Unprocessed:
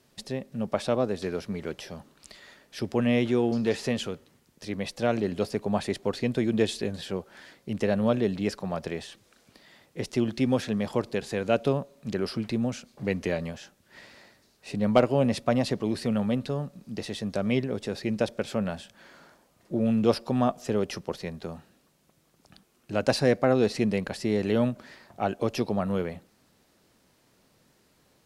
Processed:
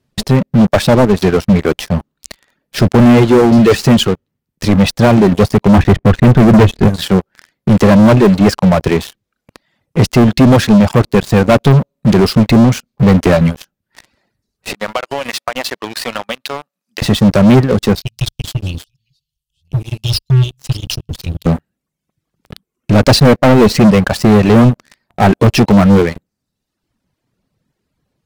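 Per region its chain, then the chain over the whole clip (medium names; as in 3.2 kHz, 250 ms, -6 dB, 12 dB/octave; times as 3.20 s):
5.78–6.88 s: low-pass 2.5 kHz 24 dB/octave + bass shelf 180 Hz +10 dB
14.73–17.02 s: high-pass 1 kHz + compression 12:1, threshold -34 dBFS
17.95–21.46 s: chunks repeated in reverse 625 ms, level -12.5 dB + Chebyshev band-stop 140–2800 Hz, order 5 + peaking EQ 110 Hz -14.5 dB 0.23 oct
whole clip: reverb removal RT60 1.2 s; tone controls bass +10 dB, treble -4 dB; waveshaping leveller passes 5; trim +4 dB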